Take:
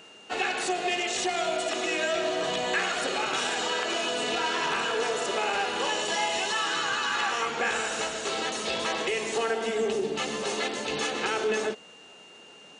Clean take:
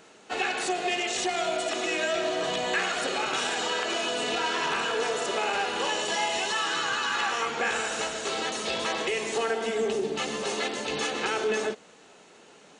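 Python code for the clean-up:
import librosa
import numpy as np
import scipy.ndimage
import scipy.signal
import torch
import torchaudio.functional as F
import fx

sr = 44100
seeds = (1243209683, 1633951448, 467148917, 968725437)

y = fx.notch(x, sr, hz=2800.0, q=30.0)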